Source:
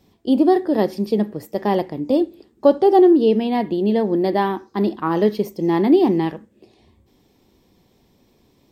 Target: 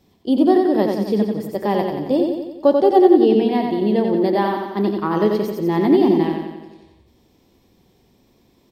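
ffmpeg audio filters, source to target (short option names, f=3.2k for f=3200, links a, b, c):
-af "aecho=1:1:90|180|270|360|450|540|630|720:0.596|0.34|0.194|0.11|0.0629|0.0358|0.0204|0.0116,volume=-1dB"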